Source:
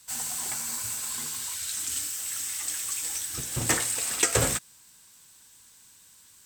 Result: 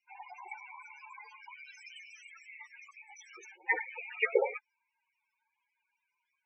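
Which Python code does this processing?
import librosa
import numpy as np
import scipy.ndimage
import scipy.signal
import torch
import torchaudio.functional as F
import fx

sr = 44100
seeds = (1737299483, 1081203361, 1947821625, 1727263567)

y = fx.over_compress(x, sr, threshold_db=-34.0, ratio=-0.5, at=(2.11, 3.68))
y = fx.power_curve(y, sr, exponent=1.4)
y = fx.cabinet(y, sr, low_hz=360.0, low_slope=24, high_hz=5400.0, hz=(390.0, 870.0, 2300.0, 4100.0), db=(4, 7, 9, -8))
y = fx.spec_topn(y, sr, count=8)
y = y * librosa.db_to_amplitude(5.0)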